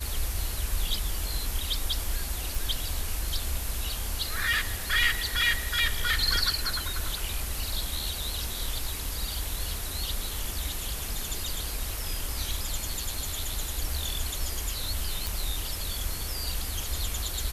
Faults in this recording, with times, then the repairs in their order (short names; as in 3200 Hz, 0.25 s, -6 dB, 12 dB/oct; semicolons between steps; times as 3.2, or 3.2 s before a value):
2.55 pop
15.27 pop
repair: de-click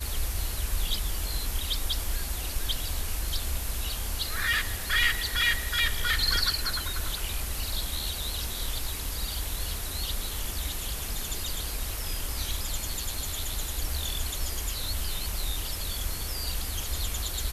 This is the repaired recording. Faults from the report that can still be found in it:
none